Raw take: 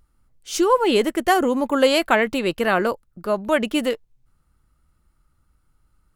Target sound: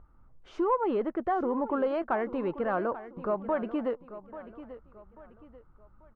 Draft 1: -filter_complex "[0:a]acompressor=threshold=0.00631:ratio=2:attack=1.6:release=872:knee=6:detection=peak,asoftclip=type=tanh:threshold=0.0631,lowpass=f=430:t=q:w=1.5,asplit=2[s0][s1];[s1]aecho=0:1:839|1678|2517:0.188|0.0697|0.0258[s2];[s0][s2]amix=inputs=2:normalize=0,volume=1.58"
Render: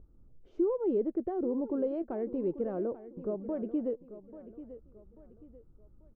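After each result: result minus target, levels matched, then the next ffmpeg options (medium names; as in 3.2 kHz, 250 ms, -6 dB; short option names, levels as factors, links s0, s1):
1 kHz band -13.0 dB; compression: peak gain reduction +3 dB
-filter_complex "[0:a]acompressor=threshold=0.00631:ratio=2:attack=1.6:release=872:knee=6:detection=peak,asoftclip=type=tanh:threshold=0.0631,lowpass=f=1100:t=q:w=1.5,asplit=2[s0][s1];[s1]aecho=0:1:839|1678|2517:0.188|0.0697|0.0258[s2];[s0][s2]amix=inputs=2:normalize=0,volume=1.58"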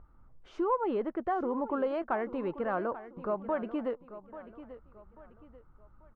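compression: peak gain reduction +3 dB
-filter_complex "[0:a]acompressor=threshold=0.0133:ratio=2:attack=1.6:release=872:knee=6:detection=peak,asoftclip=type=tanh:threshold=0.0631,lowpass=f=1100:t=q:w=1.5,asplit=2[s0][s1];[s1]aecho=0:1:839|1678|2517:0.188|0.0697|0.0258[s2];[s0][s2]amix=inputs=2:normalize=0,volume=1.58"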